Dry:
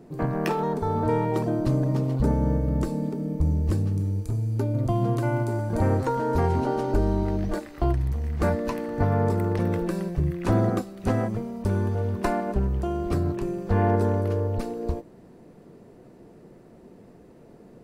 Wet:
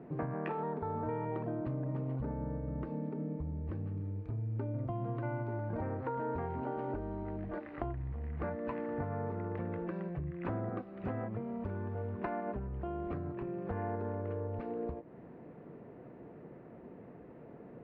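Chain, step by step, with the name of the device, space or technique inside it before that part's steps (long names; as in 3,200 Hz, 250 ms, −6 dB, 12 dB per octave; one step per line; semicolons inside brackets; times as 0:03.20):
bass amplifier (downward compressor, threshold −33 dBFS, peak gain reduction 14.5 dB; loudspeaker in its box 71–2,400 Hz, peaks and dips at 89 Hz −4 dB, 200 Hz −4 dB, 370 Hz −3 dB)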